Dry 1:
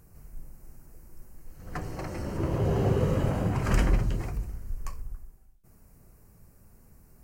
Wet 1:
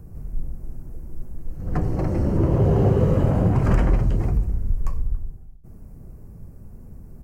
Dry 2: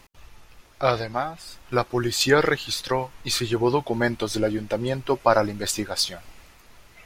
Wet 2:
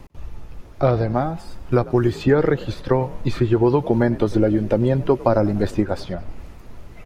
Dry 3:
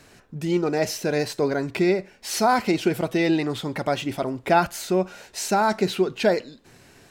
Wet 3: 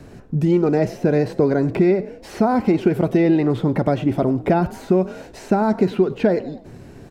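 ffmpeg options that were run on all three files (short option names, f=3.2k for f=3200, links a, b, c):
-filter_complex "[0:a]tiltshelf=f=840:g=9.5,asplit=4[a][b][c][d];[b]adelay=97,afreqshift=42,volume=-22dB[e];[c]adelay=194,afreqshift=84,volume=-30.6dB[f];[d]adelay=291,afreqshift=126,volume=-39.3dB[g];[a][e][f][g]amix=inputs=4:normalize=0,acrossover=split=560|1200|2600[h][i][j][k];[h]acompressor=threshold=-22dB:ratio=4[l];[i]acompressor=threshold=-31dB:ratio=4[m];[j]acompressor=threshold=-38dB:ratio=4[n];[k]acompressor=threshold=-53dB:ratio=4[o];[l][m][n][o]amix=inputs=4:normalize=0,volume=6dB"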